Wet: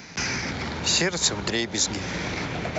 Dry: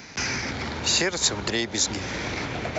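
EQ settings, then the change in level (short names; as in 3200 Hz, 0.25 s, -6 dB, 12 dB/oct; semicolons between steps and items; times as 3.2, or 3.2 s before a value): bell 170 Hz +8.5 dB 0.22 oct; 0.0 dB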